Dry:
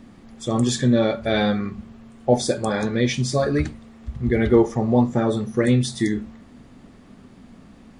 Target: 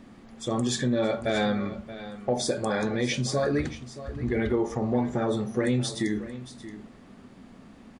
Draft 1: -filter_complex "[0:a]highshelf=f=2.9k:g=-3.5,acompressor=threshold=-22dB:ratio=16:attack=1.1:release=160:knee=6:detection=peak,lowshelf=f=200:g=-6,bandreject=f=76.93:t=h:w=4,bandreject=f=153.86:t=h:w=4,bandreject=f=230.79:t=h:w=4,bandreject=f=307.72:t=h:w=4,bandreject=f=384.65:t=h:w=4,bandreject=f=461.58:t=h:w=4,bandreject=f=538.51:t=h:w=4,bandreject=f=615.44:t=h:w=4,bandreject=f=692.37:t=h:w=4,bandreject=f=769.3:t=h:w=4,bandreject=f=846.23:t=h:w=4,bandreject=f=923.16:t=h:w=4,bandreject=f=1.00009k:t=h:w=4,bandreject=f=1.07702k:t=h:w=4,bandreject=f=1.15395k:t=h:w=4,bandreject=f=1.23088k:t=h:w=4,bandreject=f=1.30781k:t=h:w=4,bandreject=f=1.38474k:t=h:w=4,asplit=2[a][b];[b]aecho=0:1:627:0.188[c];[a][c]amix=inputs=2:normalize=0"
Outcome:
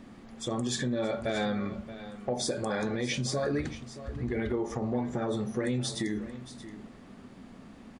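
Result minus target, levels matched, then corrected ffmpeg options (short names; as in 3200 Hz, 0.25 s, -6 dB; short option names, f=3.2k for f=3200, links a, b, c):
compressor: peak gain reduction +5.5 dB
-filter_complex "[0:a]highshelf=f=2.9k:g=-3.5,acompressor=threshold=-16dB:ratio=16:attack=1.1:release=160:knee=6:detection=peak,lowshelf=f=200:g=-6,bandreject=f=76.93:t=h:w=4,bandreject=f=153.86:t=h:w=4,bandreject=f=230.79:t=h:w=4,bandreject=f=307.72:t=h:w=4,bandreject=f=384.65:t=h:w=4,bandreject=f=461.58:t=h:w=4,bandreject=f=538.51:t=h:w=4,bandreject=f=615.44:t=h:w=4,bandreject=f=692.37:t=h:w=4,bandreject=f=769.3:t=h:w=4,bandreject=f=846.23:t=h:w=4,bandreject=f=923.16:t=h:w=4,bandreject=f=1.00009k:t=h:w=4,bandreject=f=1.07702k:t=h:w=4,bandreject=f=1.15395k:t=h:w=4,bandreject=f=1.23088k:t=h:w=4,bandreject=f=1.30781k:t=h:w=4,bandreject=f=1.38474k:t=h:w=4,asplit=2[a][b];[b]aecho=0:1:627:0.188[c];[a][c]amix=inputs=2:normalize=0"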